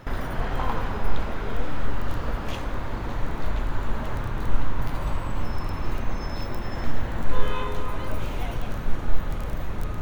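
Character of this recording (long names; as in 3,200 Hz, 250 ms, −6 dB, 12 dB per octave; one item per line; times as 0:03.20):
background noise floor −31 dBFS
spectral slope −5.5 dB per octave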